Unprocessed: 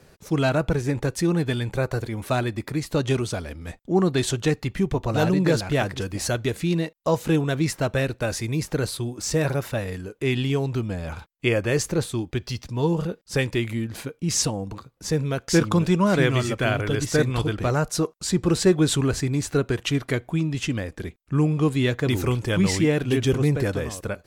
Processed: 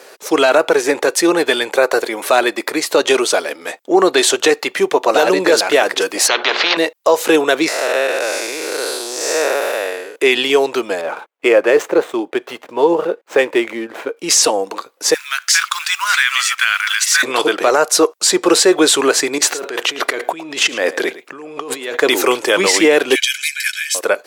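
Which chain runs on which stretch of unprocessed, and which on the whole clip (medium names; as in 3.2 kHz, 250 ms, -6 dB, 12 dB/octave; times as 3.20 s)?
6.28–6.77 s: Bessel low-pass 2.6 kHz, order 8 + hum notches 60/120/180/240/300/360/420 Hz + spectrum-flattening compressor 4:1
7.68–10.16 s: spectral blur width 265 ms + tone controls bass -14 dB, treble -1 dB
11.01–14.17 s: median filter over 9 samples + treble shelf 2.4 kHz -10.5 dB
15.14–17.23 s: companding laws mixed up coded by mu + inverse Chebyshev band-stop 120–500 Hz, stop band 60 dB
19.38–21.97 s: peaking EQ 10 kHz -5 dB 1.1 oct + compressor with a negative ratio -32 dBFS + delay 109 ms -16.5 dB
23.15–23.95 s: steep high-pass 1.8 kHz 48 dB/octave + comb 1.3 ms, depth 95%
whole clip: high-pass 400 Hz 24 dB/octave; loudness maximiser +17.5 dB; trim -1 dB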